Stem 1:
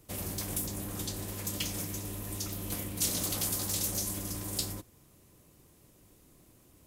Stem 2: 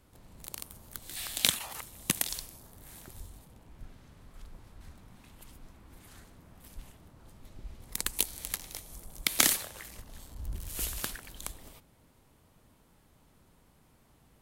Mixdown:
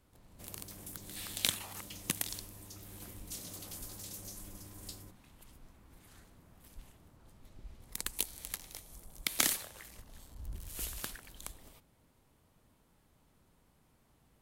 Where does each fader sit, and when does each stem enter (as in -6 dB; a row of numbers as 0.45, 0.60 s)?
-14.0, -5.5 dB; 0.30, 0.00 s